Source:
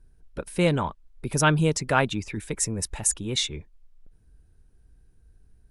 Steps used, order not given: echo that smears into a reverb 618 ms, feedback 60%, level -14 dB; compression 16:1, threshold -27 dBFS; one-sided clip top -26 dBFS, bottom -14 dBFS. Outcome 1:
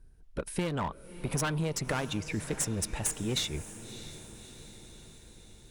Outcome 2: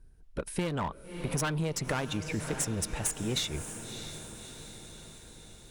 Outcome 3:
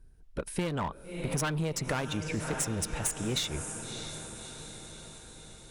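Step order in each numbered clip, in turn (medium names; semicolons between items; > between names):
one-sided clip > compression > echo that smears into a reverb; one-sided clip > echo that smears into a reverb > compression; echo that smears into a reverb > one-sided clip > compression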